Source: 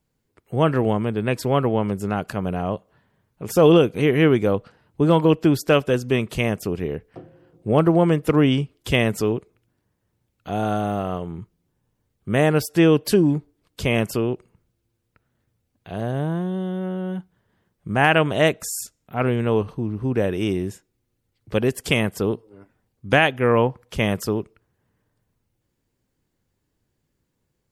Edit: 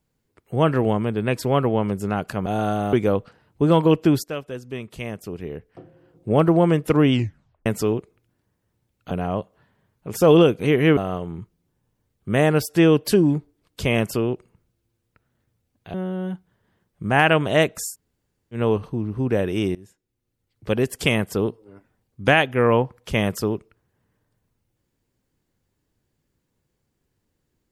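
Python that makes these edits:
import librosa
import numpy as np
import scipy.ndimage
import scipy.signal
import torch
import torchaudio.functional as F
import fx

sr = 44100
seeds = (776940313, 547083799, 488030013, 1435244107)

y = fx.edit(x, sr, fx.swap(start_s=2.46, length_s=1.86, other_s=10.5, other_length_s=0.47),
    fx.fade_in_from(start_s=5.63, length_s=2.04, curve='qua', floor_db=-13.0),
    fx.tape_stop(start_s=8.52, length_s=0.53),
    fx.cut(start_s=15.94, length_s=0.85),
    fx.room_tone_fill(start_s=18.76, length_s=0.65, crossfade_s=0.1),
    fx.fade_in_from(start_s=20.6, length_s=1.39, curve='qsin', floor_db=-22.0), tone=tone)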